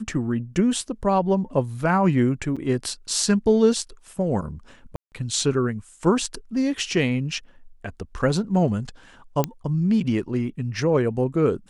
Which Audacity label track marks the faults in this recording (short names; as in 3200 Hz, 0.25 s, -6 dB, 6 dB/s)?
2.560000	2.570000	gap 5.8 ms
4.960000	5.120000	gap 0.159 s
9.440000	9.440000	pop -8 dBFS